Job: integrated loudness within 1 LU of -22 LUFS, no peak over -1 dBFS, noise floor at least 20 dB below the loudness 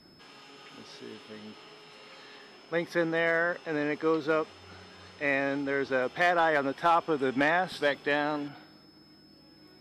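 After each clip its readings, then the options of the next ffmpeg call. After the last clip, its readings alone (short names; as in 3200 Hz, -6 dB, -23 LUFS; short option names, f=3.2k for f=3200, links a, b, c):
steady tone 5200 Hz; tone level -59 dBFS; loudness -28.0 LUFS; peak -15.5 dBFS; loudness target -22.0 LUFS
-> -af "bandreject=f=5.2k:w=30"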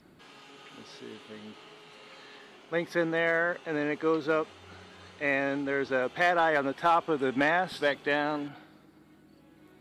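steady tone none; loudness -28.0 LUFS; peak -15.5 dBFS; loudness target -22.0 LUFS
-> -af "volume=6dB"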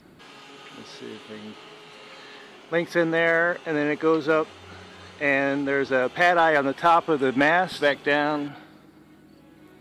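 loudness -22.0 LUFS; peak -9.5 dBFS; noise floor -52 dBFS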